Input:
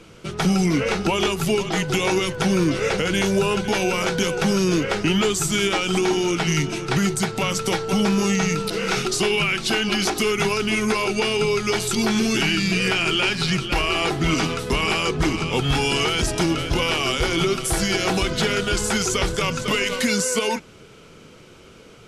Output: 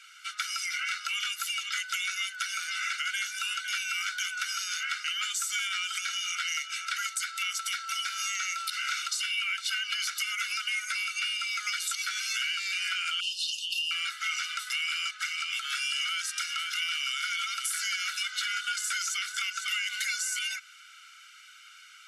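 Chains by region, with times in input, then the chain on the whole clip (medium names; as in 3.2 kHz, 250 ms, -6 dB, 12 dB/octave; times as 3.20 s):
13.20–13.91 s: brick-wall FIR high-pass 2.5 kHz + comb 3.6 ms, depth 45%
whole clip: steep high-pass 1.3 kHz 72 dB/octave; comb 1.4 ms, depth 87%; compression 4:1, threshold -27 dBFS; trim -2.5 dB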